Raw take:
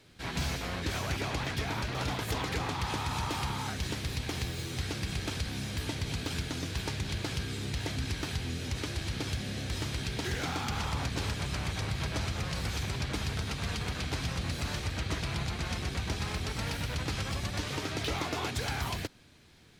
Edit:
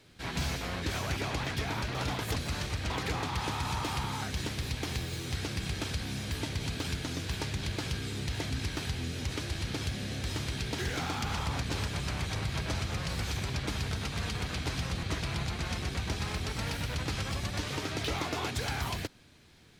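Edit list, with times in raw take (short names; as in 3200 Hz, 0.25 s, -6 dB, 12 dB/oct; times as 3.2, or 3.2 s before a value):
14.49–15.03 move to 2.36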